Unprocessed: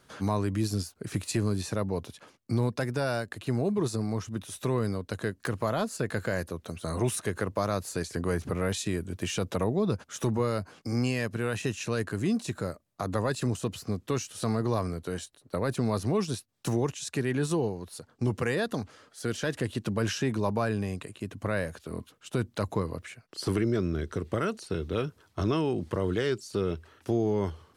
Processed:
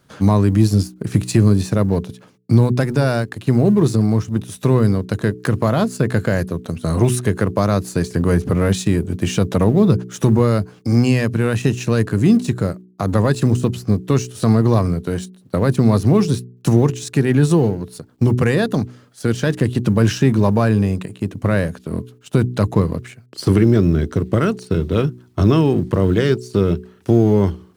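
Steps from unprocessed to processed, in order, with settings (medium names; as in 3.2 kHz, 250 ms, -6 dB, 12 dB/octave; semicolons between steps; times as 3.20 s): companding laws mixed up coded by A; peaking EQ 140 Hz +9 dB 2.5 oct; de-hum 61.61 Hz, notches 7; trim +9 dB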